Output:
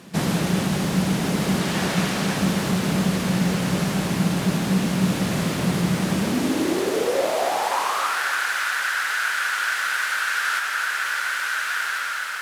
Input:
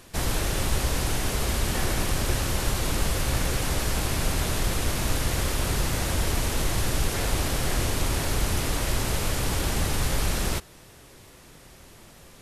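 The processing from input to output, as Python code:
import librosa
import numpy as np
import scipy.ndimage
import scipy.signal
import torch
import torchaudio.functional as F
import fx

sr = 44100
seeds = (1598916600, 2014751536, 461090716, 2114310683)

p1 = fx.weighting(x, sr, curve='A', at=(1.6, 2.37))
p2 = fx.quant_companded(p1, sr, bits=4)
p3 = p1 + (p2 * 10.0 ** (-9.0 / 20.0))
p4 = fx.high_shelf(p3, sr, hz=7500.0, db=-9.0)
p5 = p4 + fx.echo_diffused(p4, sr, ms=1492, feedback_pct=50, wet_db=-6.0, dry=0)
p6 = fx.rev_freeverb(p5, sr, rt60_s=3.6, hf_ratio=0.4, predelay_ms=95, drr_db=7.5)
p7 = fx.filter_sweep_highpass(p6, sr, from_hz=180.0, to_hz=1500.0, start_s=6.09, end_s=8.22, q=7.2)
p8 = fx.rider(p7, sr, range_db=4, speed_s=0.5)
p9 = fx.echo_crushed(p8, sr, ms=277, feedback_pct=55, bits=7, wet_db=-9.5)
y = p9 * 10.0 ** (-1.5 / 20.0)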